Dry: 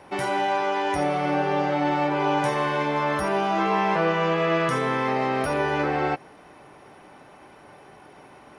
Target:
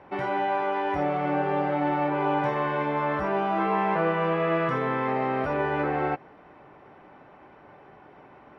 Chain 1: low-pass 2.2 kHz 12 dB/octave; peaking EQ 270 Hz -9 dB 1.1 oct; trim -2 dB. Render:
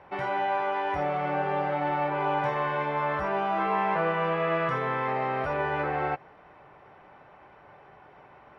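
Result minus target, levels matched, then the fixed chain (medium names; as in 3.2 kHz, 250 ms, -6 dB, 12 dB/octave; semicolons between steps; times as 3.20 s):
250 Hz band -5.0 dB
low-pass 2.2 kHz 12 dB/octave; trim -2 dB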